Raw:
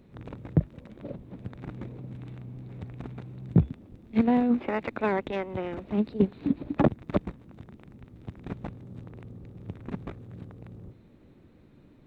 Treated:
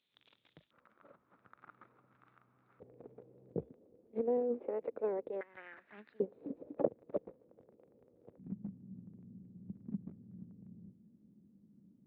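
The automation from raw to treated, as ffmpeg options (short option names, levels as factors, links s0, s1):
-af "asetnsamples=n=441:p=0,asendcmd='0.71 bandpass f 1300;2.8 bandpass f 480;5.41 bandpass f 1700;6.2 bandpass f 500;8.38 bandpass f 200',bandpass=f=3400:t=q:w=5.5:csg=0"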